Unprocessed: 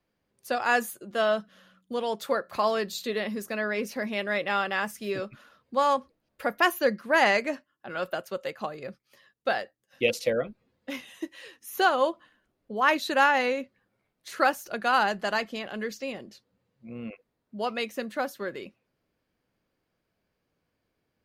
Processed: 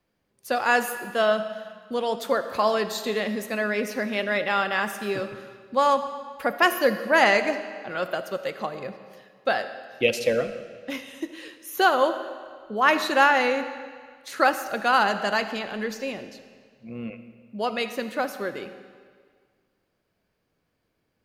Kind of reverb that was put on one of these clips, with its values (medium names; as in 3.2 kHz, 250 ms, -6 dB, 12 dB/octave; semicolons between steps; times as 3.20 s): algorithmic reverb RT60 1.8 s, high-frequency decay 0.9×, pre-delay 15 ms, DRR 10 dB; trim +3 dB